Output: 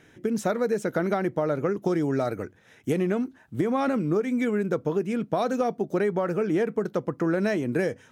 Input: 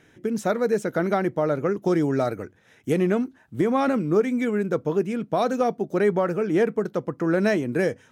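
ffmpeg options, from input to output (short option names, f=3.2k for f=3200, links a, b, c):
-af "acompressor=threshold=-22dB:ratio=6,volume=1dB"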